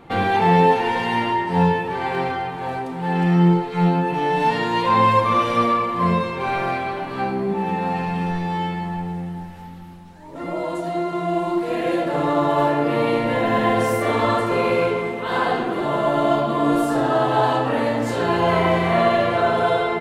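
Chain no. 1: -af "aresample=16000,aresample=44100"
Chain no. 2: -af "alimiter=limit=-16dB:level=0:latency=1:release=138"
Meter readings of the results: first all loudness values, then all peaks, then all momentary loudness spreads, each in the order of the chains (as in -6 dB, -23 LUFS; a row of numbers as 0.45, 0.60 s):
-20.5, -25.0 LUFS; -4.0, -16.0 dBFS; 10, 3 LU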